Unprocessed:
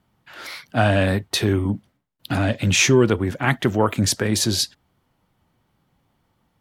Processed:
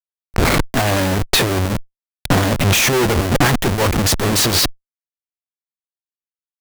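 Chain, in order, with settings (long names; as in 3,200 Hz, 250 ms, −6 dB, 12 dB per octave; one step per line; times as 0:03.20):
comparator with hysteresis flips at −31.5 dBFS
harmonic generator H 4 −9 dB, 6 −33 dB, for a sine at −16 dBFS
level +7.5 dB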